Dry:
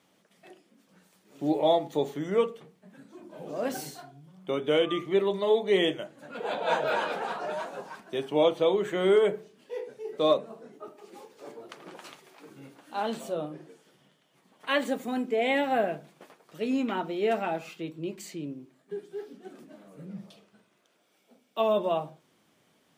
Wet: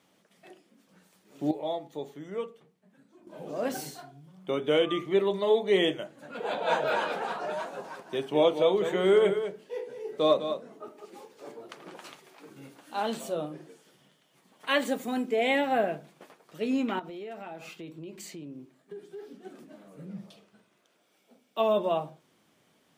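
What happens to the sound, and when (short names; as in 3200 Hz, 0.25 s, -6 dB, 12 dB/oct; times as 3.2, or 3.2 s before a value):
1.51–3.27 gain -9.5 dB
7.64–11.06 echo 0.202 s -9 dB
12.56–15.56 high shelf 3700 Hz +4.5 dB
16.99–19.39 compressor, threshold -38 dBFS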